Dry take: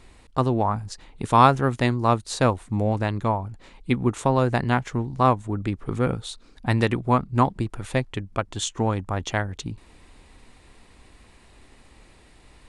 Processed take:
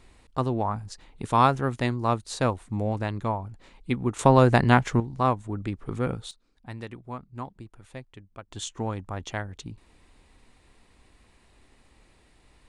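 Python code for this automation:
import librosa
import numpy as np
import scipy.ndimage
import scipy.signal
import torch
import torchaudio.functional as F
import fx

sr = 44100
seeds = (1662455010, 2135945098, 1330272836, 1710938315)

y = fx.gain(x, sr, db=fx.steps((0.0, -4.5), (4.19, 3.5), (5.0, -4.5), (6.31, -17.0), (8.52, -7.0)))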